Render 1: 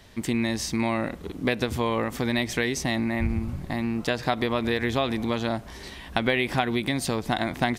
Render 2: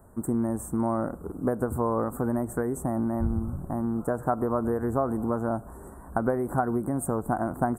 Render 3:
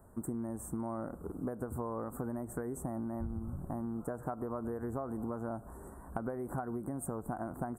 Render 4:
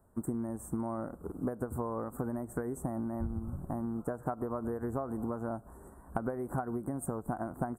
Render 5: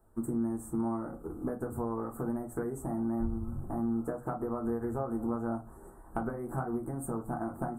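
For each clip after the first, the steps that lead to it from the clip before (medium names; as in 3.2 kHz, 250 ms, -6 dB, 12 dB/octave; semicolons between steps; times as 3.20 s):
Chebyshev band-stop 1.4–8.1 kHz, order 4
compression, threshold -29 dBFS, peak gain reduction 9.5 dB; trim -5 dB
upward expansion 1.5:1, over -57 dBFS; trim +4.5 dB
reverberation RT60 0.20 s, pre-delay 3 ms, DRR 1 dB; trim -2.5 dB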